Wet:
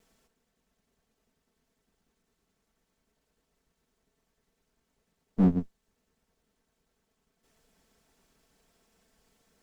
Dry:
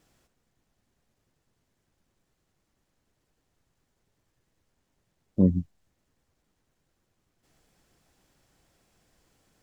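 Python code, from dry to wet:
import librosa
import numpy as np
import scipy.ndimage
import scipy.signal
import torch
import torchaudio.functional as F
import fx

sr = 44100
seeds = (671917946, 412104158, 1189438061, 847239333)

y = fx.lower_of_two(x, sr, delay_ms=4.5)
y = fx.peak_eq(y, sr, hz=410.0, db=2.5, octaves=0.77)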